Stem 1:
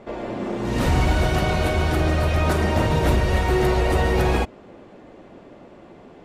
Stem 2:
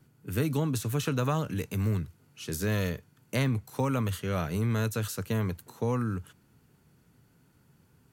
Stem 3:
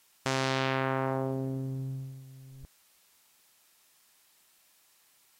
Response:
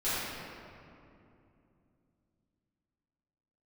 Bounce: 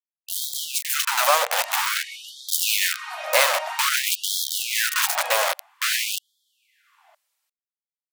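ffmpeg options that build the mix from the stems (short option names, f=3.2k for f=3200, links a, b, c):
-filter_complex "[0:a]adelay=900,volume=-9dB[a];[1:a]acontrast=74,acrusher=bits=3:mix=0:aa=0.000001,volume=2dB[b];[2:a]adelay=2100,volume=-15dB[c];[a][b][c]amix=inputs=3:normalize=0,dynaudnorm=f=250:g=9:m=8dB,afftfilt=real='re*gte(b*sr/1024,470*pow(3200/470,0.5+0.5*sin(2*PI*0.51*pts/sr)))':imag='im*gte(b*sr/1024,470*pow(3200/470,0.5+0.5*sin(2*PI*0.51*pts/sr)))':win_size=1024:overlap=0.75"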